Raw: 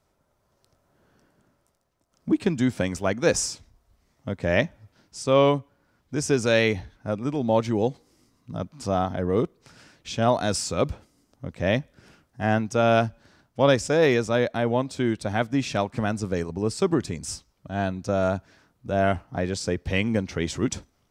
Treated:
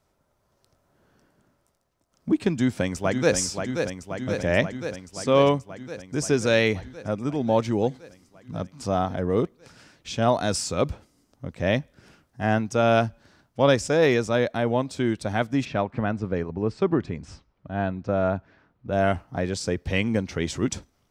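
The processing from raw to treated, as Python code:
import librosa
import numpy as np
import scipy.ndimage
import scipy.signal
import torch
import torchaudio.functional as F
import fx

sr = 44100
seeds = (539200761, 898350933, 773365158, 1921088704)

y = fx.echo_throw(x, sr, start_s=2.51, length_s=0.85, ms=530, feedback_pct=75, wet_db=-6.0)
y = fx.lowpass(y, sr, hz=2500.0, slope=12, at=(15.64, 18.91), fade=0.02)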